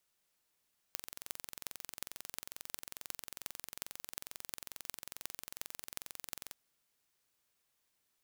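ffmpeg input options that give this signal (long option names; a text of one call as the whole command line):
ffmpeg -f lavfi -i "aevalsrc='0.299*eq(mod(n,1978),0)*(0.5+0.5*eq(mod(n,15824),0))':duration=5.57:sample_rate=44100" out.wav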